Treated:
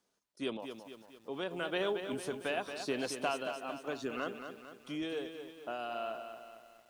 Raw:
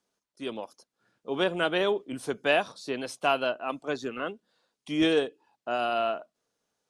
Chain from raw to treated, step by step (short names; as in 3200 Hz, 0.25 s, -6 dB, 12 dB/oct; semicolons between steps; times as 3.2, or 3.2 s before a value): compressor 3:1, threshold -31 dBFS, peak gain reduction 10 dB; random-step tremolo; lo-fi delay 0.226 s, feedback 55%, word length 10-bit, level -8 dB